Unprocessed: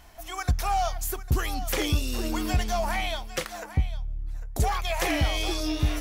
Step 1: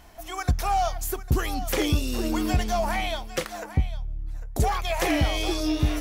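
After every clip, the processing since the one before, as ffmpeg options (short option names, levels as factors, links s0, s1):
-af "equalizer=f=300:w=0.48:g=4.5"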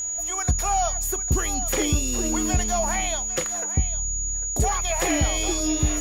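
-af "aeval=exprs='val(0)+0.0501*sin(2*PI*6800*n/s)':c=same"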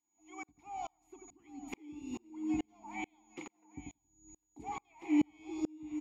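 -filter_complex "[0:a]asplit=3[s0][s1][s2];[s0]bandpass=f=300:t=q:w=8,volume=1[s3];[s1]bandpass=f=870:t=q:w=8,volume=0.501[s4];[s2]bandpass=f=2240:t=q:w=8,volume=0.355[s5];[s3][s4][s5]amix=inputs=3:normalize=0,asplit=2[s6][s7];[s7]adelay=90,lowpass=f=1800:p=1,volume=0.335,asplit=2[s8][s9];[s9]adelay=90,lowpass=f=1800:p=1,volume=0.45,asplit=2[s10][s11];[s11]adelay=90,lowpass=f=1800:p=1,volume=0.45,asplit=2[s12][s13];[s13]adelay=90,lowpass=f=1800:p=1,volume=0.45,asplit=2[s14][s15];[s15]adelay=90,lowpass=f=1800:p=1,volume=0.45[s16];[s6][s8][s10][s12][s14][s16]amix=inputs=6:normalize=0,aeval=exprs='val(0)*pow(10,-37*if(lt(mod(-2.3*n/s,1),2*abs(-2.3)/1000),1-mod(-2.3*n/s,1)/(2*abs(-2.3)/1000),(mod(-2.3*n/s,1)-2*abs(-2.3)/1000)/(1-2*abs(-2.3)/1000))/20)':c=same,volume=1.58"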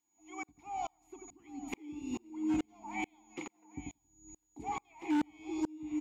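-af "volume=33.5,asoftclip=hard,volume=0.0299,volume=1.5"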